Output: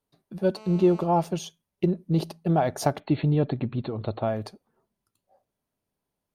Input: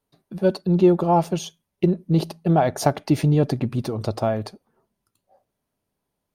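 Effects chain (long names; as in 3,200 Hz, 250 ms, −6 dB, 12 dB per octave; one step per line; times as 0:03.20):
0:00.57–0:01.04: phone interference −42 dBFS
0:03.00–0:04.28: linear-phase brick-wall low-pass 4,400 Hz
level −4.5 dB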